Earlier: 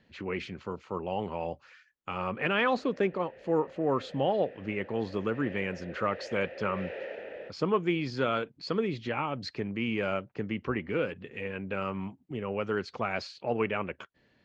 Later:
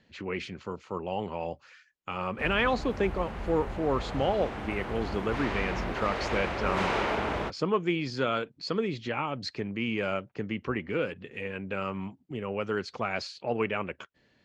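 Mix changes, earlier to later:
background: remove formant filter e
master: remove low-pass filter 4,000 Hz 6 dB per octave

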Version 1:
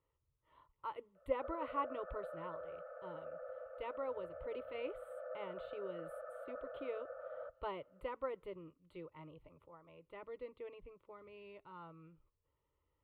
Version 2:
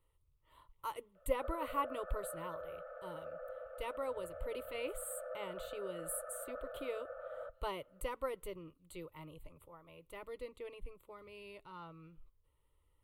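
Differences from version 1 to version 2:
speech: remove high-pass filter 150 Hz 6 dB per octave
master: remove high-frequency loss of the air 420 metres

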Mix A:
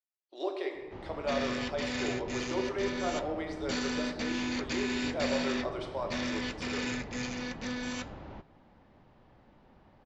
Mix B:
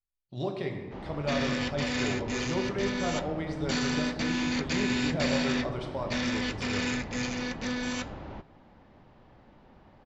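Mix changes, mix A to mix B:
speech: remove elliptic high-pass filter 330 Hz, stop band 50 dB
background +4.0 dB

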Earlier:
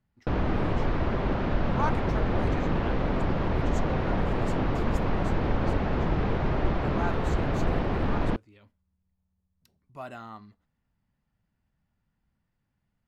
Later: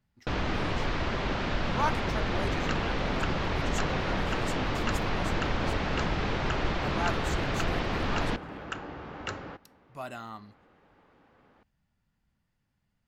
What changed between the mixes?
first sound: add tilt shelving filter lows −5 dB, about 1,300 Hz
second sound: unmuted
master: add high-shelf EQ 3,400 Hz +9 dB

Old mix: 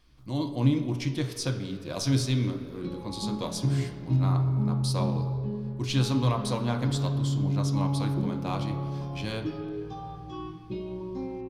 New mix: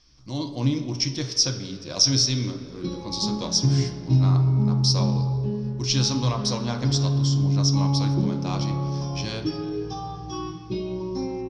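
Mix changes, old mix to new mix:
background: send +6.0 dB
master: add low-pass with resonance 5,500 Hz, resonance Q 13

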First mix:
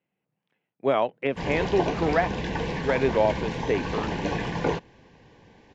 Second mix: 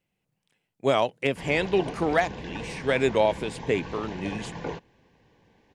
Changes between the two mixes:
speech: remove band-pass filter 160–2,200 Hz
background −8.0 dB

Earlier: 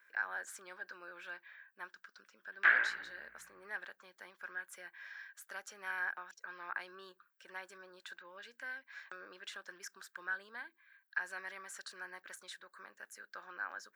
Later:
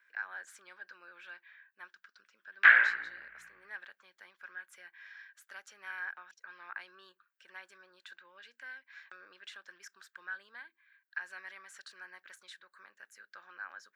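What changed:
speech −9.0 dB
master: add parametric band 2,600 Hz +9 dB 2.5 octaves

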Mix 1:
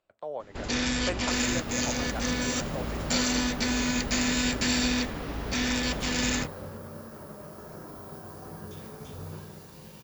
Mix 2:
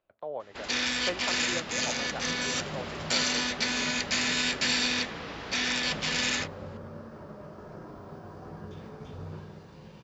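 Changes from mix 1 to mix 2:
first sound: add spectral tilt +4 dB per octave
master: add high-frequency loss of the air 170 metres

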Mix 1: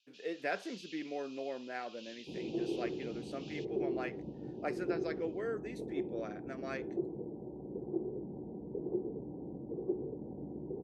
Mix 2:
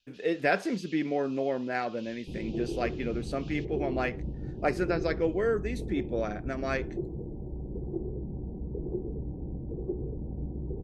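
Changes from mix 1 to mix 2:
speech +10.0 dB
master: remove high-pass filter 250 Hz 12 dB per octave

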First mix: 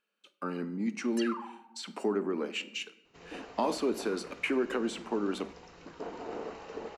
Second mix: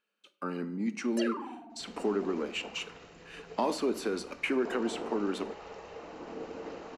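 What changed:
first sound: remove linear-phase brick-wall high-pass 770 Hz
second sound: entry −1.35 s

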